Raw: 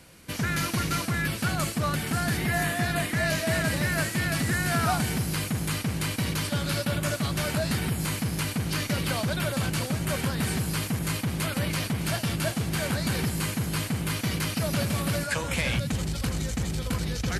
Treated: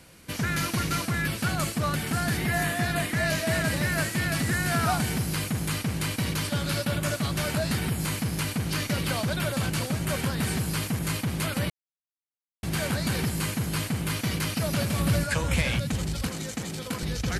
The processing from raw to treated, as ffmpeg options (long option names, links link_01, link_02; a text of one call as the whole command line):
ffmpeg -i in.wav -filter_complex "[0:a]asettb=1/sr,asplit=3[link_01][link_02][link_03];[link_01]atrim=end=14.994[link_04];[link_02]atrim=start=14.99:end=15.62,asetpts=PTS-STARTPTS,afade=type=in:duration=0.004:curve=qsin,afade=type=out:start_time=0.626:duration=0.004:curve=qsin,lowshelf=frequency=130:gain=10.5[link_05];[link_03]atrim=start=15.616[link_06];[link_04][link_05]acrossfade=duration=0.004:curve1=hsin:curve2=qsin[link_07];[link_07][link_06]acrossfade=duration=0.004:curve1=qsin:curve2=hsin,asettb=1/sr,asplit=3[link_08][link_09][link_10];[link_08]atrim=end=16.274[link_11];[link_09]atrim=start=16.27:end=17.03,asetpts=PTS-STARTPTS,afade=type=in:duration=0.004:curve=qsin,afade=type=out:start_time=0.756:duration=0.004:curve=qsin,highpass=180[link_12];[link_10]atrim=start=17.026[link_13];[link_11][link_12]acrossfade=duration=0.004:curve1=hsin:curve2=qsin[link_14];[link_14][link_13]acrossfade=duration=0.004:curve1=qsin:curve2=hsin,asplit=3[link_15][link_16][link_17];[link_15]atrim=end=11.7,asetpts=PTS-STARTPTS,afade=type=out:start_time=11.696:duration=0.004:curve=hsin[link_18];[link_16]atrim=start=11.7:end=12.63,asetpts=PTS-STARTPTS,volume=0[link_19];[link_17]atrim=start=12.63,asetpts=PTS-STARTPTS,afade=type=in:duration=0.004:curve=hsin[link_20];[link_18][link_19][link_20]concat=n=3:v=0:a=1" out.wav